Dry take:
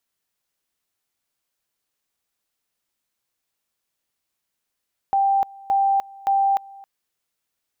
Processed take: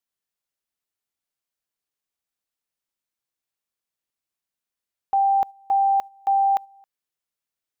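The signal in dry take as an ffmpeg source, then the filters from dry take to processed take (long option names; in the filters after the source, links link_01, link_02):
-f lavfi -i "aevalsrc='pow(10,(-15.5-23.5*gte(mod(t,0.57),0.3))/20)*sin(2*PI*787*t)':duration=1.71:sample_rate=44100"
-af "agate=range=-9dB:threshold=-29dB:ratio=16:detection=peak"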